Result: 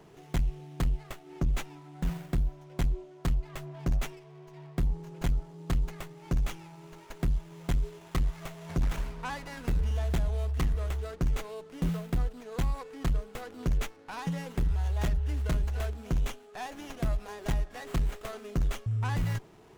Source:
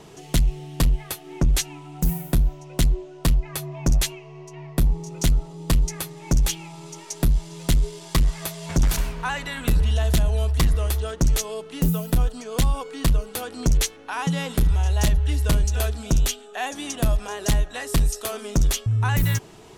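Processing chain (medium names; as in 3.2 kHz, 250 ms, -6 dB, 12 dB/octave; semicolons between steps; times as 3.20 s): sliding maximum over 9 samples; trim -8.5 dB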